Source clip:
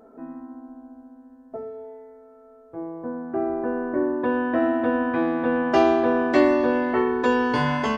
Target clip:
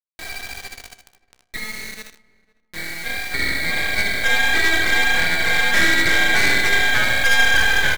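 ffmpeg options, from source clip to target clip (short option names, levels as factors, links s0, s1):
-filter_complex "[0:a]highpass=f=200:p=1,lowpass=f=2200:t=q:w=0.5098,lowpass=f=2200:t=q:w=0.6013,lowpass=f=2200:t=q:w=0.9,lowpass=f=2200:t=q:w=2.563,afreqshift=-2600,equalizer=f=1600:w=5.8:g=14,aphaser=in_gain=1:out_gain=1:delay=4.8:decay=0.5:speed=1.5:type=sinusoidal,asoftclip=type=tanh:threshold=0.237,dynaudnorm=f=130:g=3:m=1.88,acrusher=bits=4:mix=0:aa=0.000001,asplit=2[s0][s1];[s1]aecho=0:1:62|77:0.316|0.355[s2];[s0][s2]amix=inputs=2:normalize=0,aeval=exprs='max(val(0),0)':c=same,asplit=2[s3][s4];[s4]adelay=503,lowpass=f=1200:p=1,volume=0.075,asplit=2[s5][s6];[s6]adelay=503,lowpass=f=1200:p=1,volume=0.22[s7];[s5][s7]amix=inputs=2:normalize=0[s8];[s3][s8]amix=inputs=2:normalize=0,flanger=delay=9.5:depth=6.7:regen=-77:speed=0.35:shape=triangular,volume=1.41"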